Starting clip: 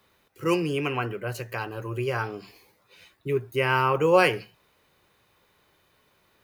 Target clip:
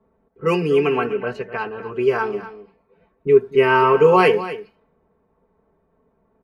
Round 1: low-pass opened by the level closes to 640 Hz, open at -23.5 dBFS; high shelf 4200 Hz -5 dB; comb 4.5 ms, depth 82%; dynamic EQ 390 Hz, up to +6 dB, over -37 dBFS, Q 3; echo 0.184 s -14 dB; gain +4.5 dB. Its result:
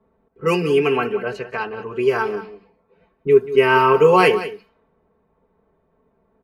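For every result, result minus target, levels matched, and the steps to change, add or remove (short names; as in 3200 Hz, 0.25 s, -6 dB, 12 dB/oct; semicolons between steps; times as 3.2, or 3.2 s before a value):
8000 Hz band +6.0 dB; echo 64 ms early
change: high shelf 4200 Hz -13.5 dB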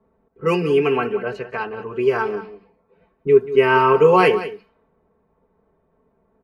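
echo 64 ms early
change: echo 0.248 s -14 dB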